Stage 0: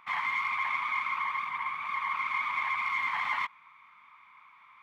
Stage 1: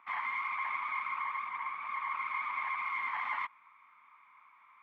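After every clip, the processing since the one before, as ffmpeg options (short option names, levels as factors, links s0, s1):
-filter_complex "[0:a]acrossover=split=200 2700:gain=0.126 1 0.2[s0][s1][s2];[s0][s1][s2]amix=inputs=3:normalize=0,volume=0.668"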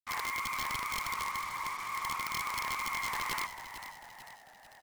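-filter_complex "[0:a]aeval=exprs='(mod(23.7*val(0)+1,2)-1)/23.7':c=same,acrusher=bits=6:mix=0:aa=0.5,asplit=2[s0][s1];[s1]asplit=6[s2][s3][s4][s5][s6][s7];[s2]adelay=445,afreqshift=-81,volume=0.282[s8];[s3]adelay=890,afreqshift=-162,volume=0.15[s9];[s4]adelay=1335,afreqshift=-243,volume=0.0794[s10];[s5]adelay=1780,afreqshift=-324,volume=0.0422[s11];[s6]adelay=2225,afreqshift=-405,volume=0.0221[s12];[s7]adelay=2670,afreqshift=-486,volume=0.0117[s13];[s8][s9][s10][s11][s12][s13]amix=inputs=6:normalize=0[s14];[s0][s14]amix=inputs=2:normalize=0"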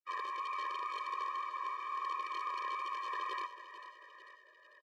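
-af "highpass=110,lowpass=2600,aecho=1:1:887:0.075,afftfilt=real='re*eq(mod(floor(b*sr/1024/320),2),1)':imag='im*eq(mod(floor(b*sr/1024/320),2),1)':win_size=1024:overlap=0.75"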